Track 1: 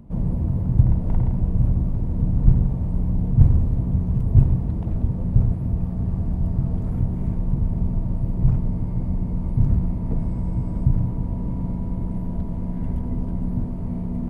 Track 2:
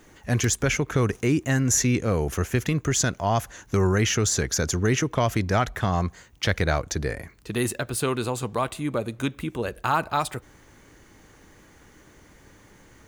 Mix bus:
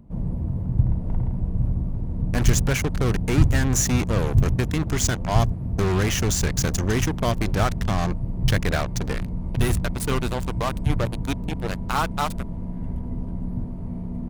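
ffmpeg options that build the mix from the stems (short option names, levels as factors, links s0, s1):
-filter_complex "[0:a]volume=0.631[s0];[1:a]acrusher=bits=3:mix=0:aa=0.5,adelay=2050,volume=0.841[s1];[s0][s1]amix=inputs=2:normalize=0"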